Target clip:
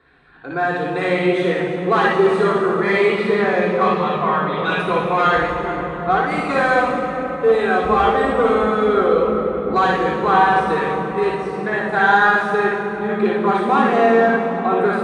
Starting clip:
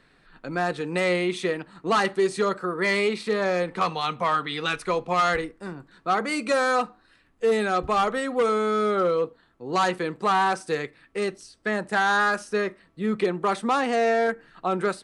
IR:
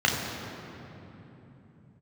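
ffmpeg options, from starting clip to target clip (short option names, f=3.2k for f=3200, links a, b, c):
-filter_complex "[0:a]asettb=1/sr,asplit=3[a][b][c];[a]atrim=end=3.934[d];[b]atrim=start=3.93:end=4.64,asetpts=PTS-STARTPTS,afade=t=in:d=0.004:c=qsin,afade=t=out:st=0.706:d=0.004:c=qsin,equalizer=f=9.1k:w=0.3:g=-10.5[e];[c]atrim=start=4.636[f];[d][e]acrossfade=d=0.004:c1=hsin:c2=qsin[g];[g][f]acrossfade=d=0.004:c1=qsin:c2=hsin[h];[1:a]atrim=start_sample=2205,asetrate=23373,aresample=44100[i];[h][i]afir=irnorm=-1:irlink=0,volume=-13.5dB"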